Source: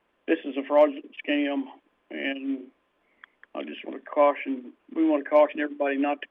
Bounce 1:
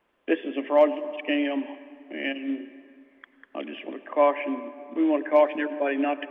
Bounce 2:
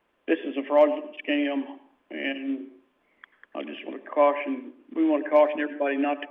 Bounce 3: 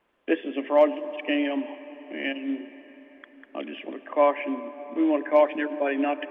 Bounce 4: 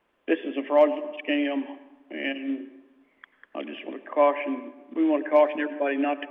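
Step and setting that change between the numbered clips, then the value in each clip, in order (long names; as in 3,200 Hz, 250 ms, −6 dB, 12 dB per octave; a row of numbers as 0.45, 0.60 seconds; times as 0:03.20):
dense smooth reverb, RT60: 2.3, 0.53, 5, 1.1 seconds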